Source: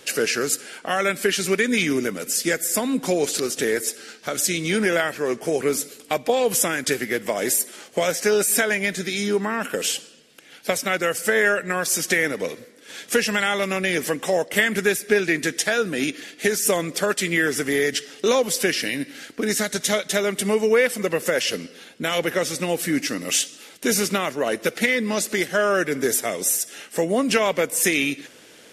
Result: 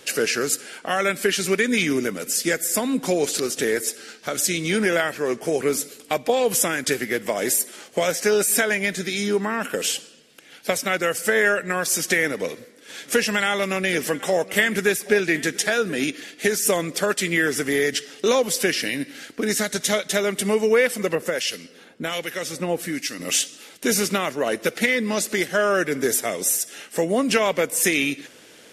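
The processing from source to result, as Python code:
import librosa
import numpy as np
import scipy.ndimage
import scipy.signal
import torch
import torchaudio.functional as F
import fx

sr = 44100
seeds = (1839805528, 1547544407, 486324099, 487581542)

y = fx.echo_single(x, sr, ms=778, db=-20.0, at=(13.04, 15.95), fade=0.02)
y = fx.harmonic_tremolo(y, sr, hz=1.3, depth_pct=70, crossover_hz=1800.0, at=(21.15, 23.2))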